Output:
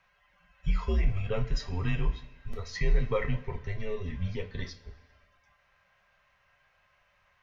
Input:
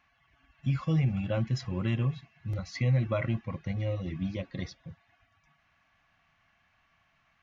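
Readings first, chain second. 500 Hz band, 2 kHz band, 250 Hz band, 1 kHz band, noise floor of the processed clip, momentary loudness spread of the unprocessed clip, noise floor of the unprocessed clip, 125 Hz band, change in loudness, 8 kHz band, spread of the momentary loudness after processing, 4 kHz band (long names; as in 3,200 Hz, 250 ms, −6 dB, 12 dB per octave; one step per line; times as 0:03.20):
+1.5 dB, +2.0 dB, −6.5 dB, +1.5 dB, −69 dBFS, 12 LU, −70 dBFS, −4.5 dB, −2.0 dB, can't be measured, 13 LU, +1.0 dB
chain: coupled-rooms reverb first 0.25 s, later 1.5 s, from −18 dB, DRR 3 dB
frequency shifter −96 Hz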